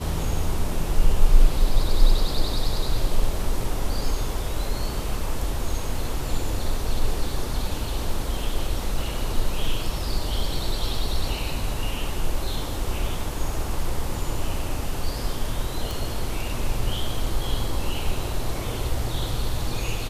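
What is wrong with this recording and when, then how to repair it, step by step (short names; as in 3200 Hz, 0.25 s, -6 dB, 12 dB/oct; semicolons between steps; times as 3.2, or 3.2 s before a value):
15.91 pop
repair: de-click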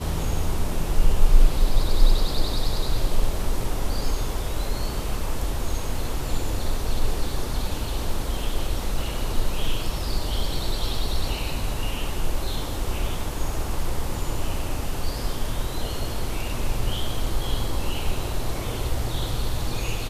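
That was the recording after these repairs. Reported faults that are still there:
none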